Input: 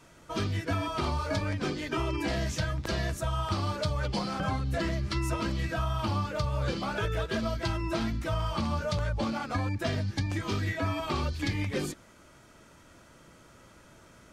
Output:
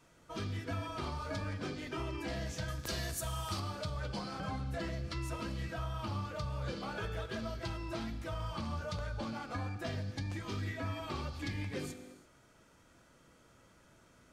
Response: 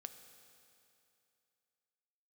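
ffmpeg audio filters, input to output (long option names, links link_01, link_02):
-filter_complex "[0:a]asettb=1/sr,asplit=3[link_01][link_02][link_03];[link_01]atrim=end=2.684[link_04];[link_02]atrim=start=2.68:end=3.6,asetpts=PTS-STARTPTS,afade=type=in:duration=0.004:curve=qsin,afade=type=out:start_time=0.916:duration=0.004:curve=qsin,aemphasis=mode=production:type=75kf[link_05];[link_03]atrim=start=3.596[link_06];[link_04][link_05]acrossfade=duration=0.004:curve1=hsin:curve2=qsin[link_07];[link_07][link_06]acrossfade=duration=0.004:curve1=qsin:curve2=hsin,asplit=2[link_08][link_09];[link_09]asoftclip=type=hard:threshold=-26.5dB,volume=-11dB[link_10];[link_08][link_10]amix=inputs=2:normalize=0[link_11];[1:a]atrim=start_sample=2205,afade=type=out:start_time=0.4:duration=0.01,atrim=end_sample=18081[link_12];[link_11][link_12]afir=irnorm=-1:irlink=0,volume=-5dB"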